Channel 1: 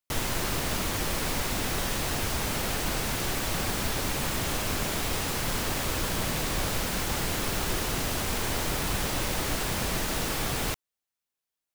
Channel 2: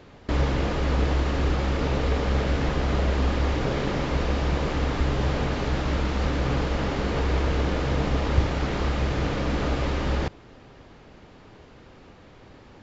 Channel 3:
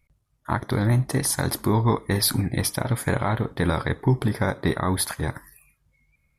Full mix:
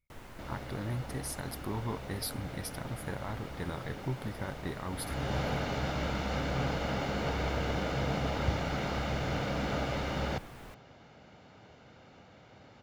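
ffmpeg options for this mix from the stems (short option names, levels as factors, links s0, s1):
-filter_complex "[0:a]acrossover=split=2500[s0][s1];[s1]acompressor=threshold=0.00708:ratio=4:attack=1:release=60[s2];[s0][s2]amix=inputs=2:normalize=0,volume=0.126[s3];[1:a]highpass=110,aecho=1:1:1.4:0.41,adelay=100,volume=0.531,afade=t=in:st=4.9:d=0.47:silence=0.237137[s4];[2:a]volume=0.168[s5];[s3][s4][s5]amix=inputs=3:normalize=0"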